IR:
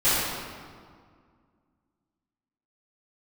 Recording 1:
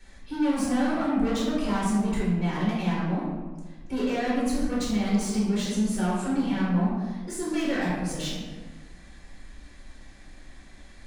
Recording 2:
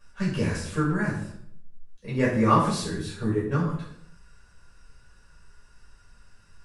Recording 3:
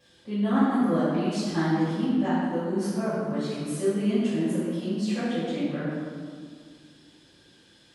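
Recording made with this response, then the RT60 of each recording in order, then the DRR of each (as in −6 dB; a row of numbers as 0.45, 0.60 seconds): 3; 1.3, 0.70, 2.0 seconds; −9.0, −8.5, −16.0 decibels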